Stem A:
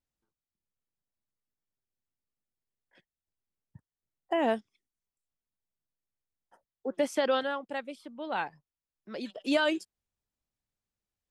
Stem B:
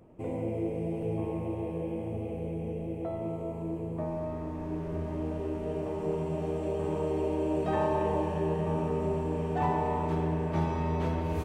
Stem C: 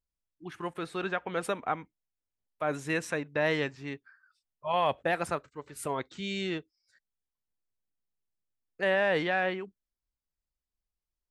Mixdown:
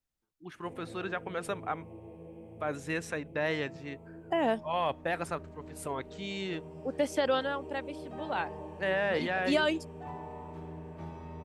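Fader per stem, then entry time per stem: -1.0 dB, -14.0 dB, -3.5 dB; 0.00 s, 0.45 s, 0.00 s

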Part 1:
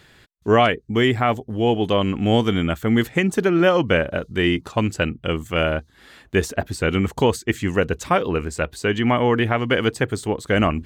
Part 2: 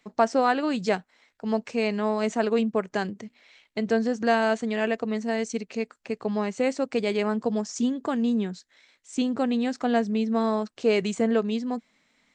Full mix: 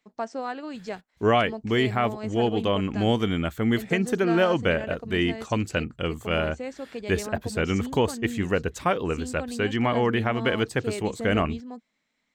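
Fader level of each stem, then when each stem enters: -5.0 dB, -10.0 dB; 0.75 s, 0.00 s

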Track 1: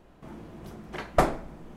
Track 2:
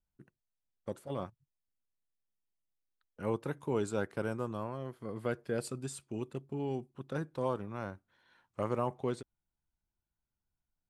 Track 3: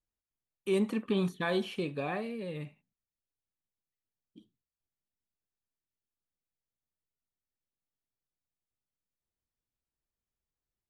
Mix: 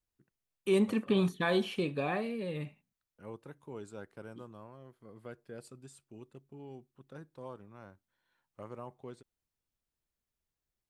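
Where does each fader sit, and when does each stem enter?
mute, -12.0 dB, +1.5 dB; mute, 0.00 s, 0.00 s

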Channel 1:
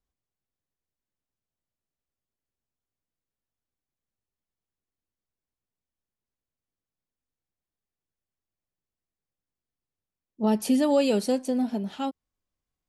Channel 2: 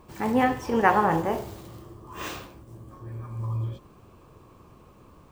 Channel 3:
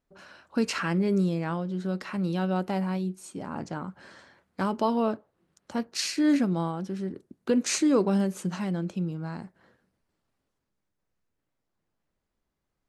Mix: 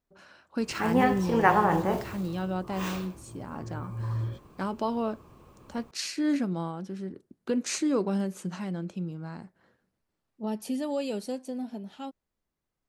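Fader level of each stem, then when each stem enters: -9.0 dB, -1.5 dB, -4.0 dB; 0.00 s, 0.60 s, 0.00 s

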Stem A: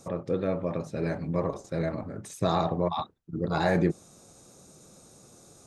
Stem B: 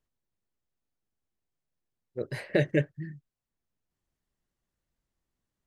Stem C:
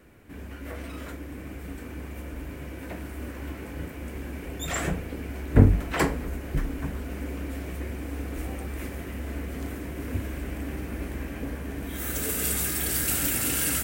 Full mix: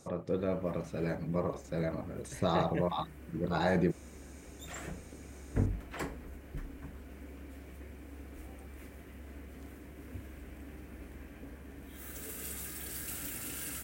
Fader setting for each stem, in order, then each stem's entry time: -4.5 dB, -12.0 dB, -14.5 dB; 0.00 s, 0.00 s, 0.00 s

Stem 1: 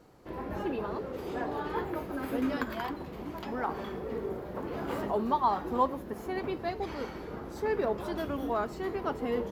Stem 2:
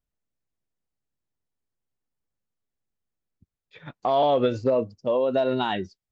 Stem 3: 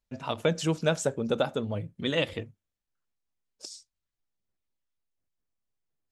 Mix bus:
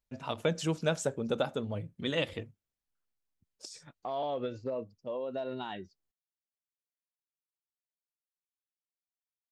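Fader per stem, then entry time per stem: mute, -13.5 dB, -4.0 dB; mute, 0.00 s, 0.00 s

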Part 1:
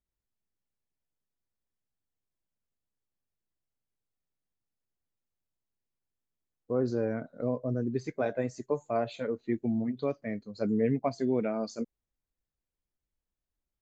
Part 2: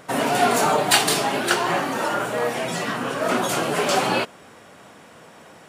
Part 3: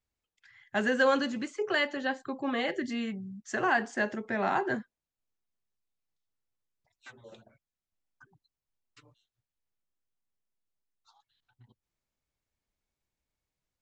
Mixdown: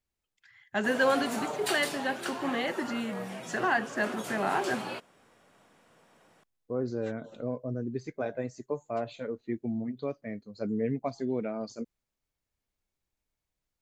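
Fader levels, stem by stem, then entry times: -3.0 dB, -16.0 dB, -0.5 dB; 0.00 s, 0.75 s, 0.00 s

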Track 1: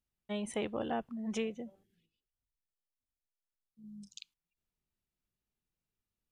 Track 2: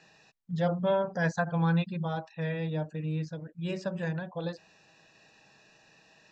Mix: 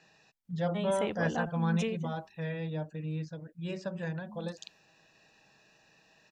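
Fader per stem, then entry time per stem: +1.5 dB, -3.5 dB; 0.45 s, 0.00 s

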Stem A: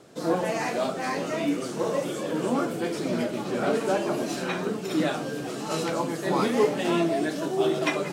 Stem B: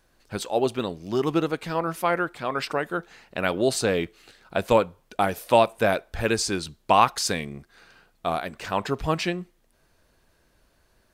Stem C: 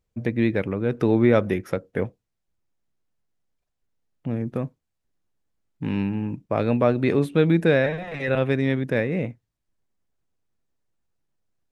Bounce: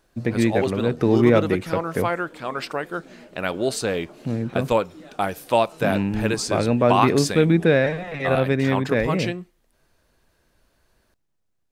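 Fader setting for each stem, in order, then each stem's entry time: -19.0 dB, -1.0 dB, +1.5 dB; 0.00 s, 0.00 s, 0.00 s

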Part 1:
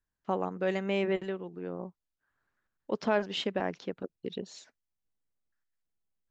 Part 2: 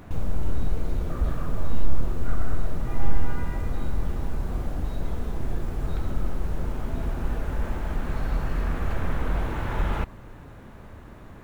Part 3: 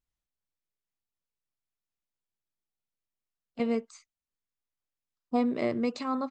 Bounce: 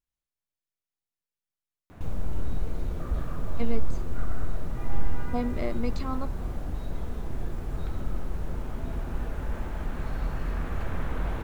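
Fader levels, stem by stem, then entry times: mute, -4.0 dB, -3.5 dB; mute, 1.90 s, 0.00 s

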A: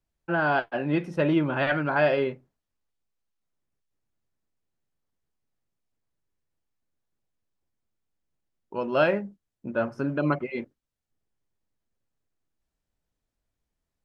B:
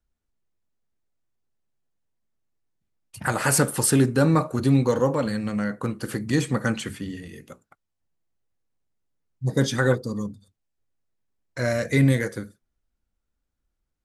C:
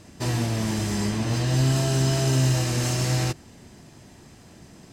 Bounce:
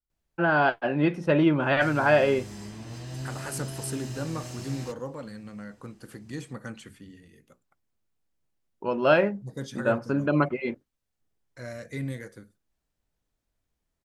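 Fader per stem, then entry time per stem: +2.0 dB, -14.5 dB, -15.0 dB; 0.10 s, 0.00 s, 1.60 s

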